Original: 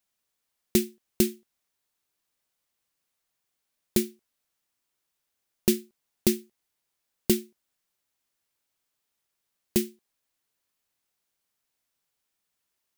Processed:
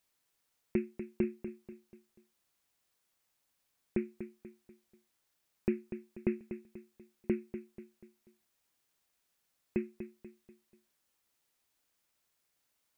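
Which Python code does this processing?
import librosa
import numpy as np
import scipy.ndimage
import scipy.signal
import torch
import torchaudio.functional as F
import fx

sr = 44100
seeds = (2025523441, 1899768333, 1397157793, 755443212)

y = scipy.signal.sosfilt(scipy.signal.cheby1(8, 1.0, 2600.0, 'lowpass', fs=sr, output='sos'), x)
y = fx.echo_feedback(y, sr, ms=243, feedback_pct=41, wet_db=-10.5)
y = fx.quant_dither(y, sr, seeds[0], bits=12, dither='triangular')
y = y * 10.0 ** (-7.5 / 20.0)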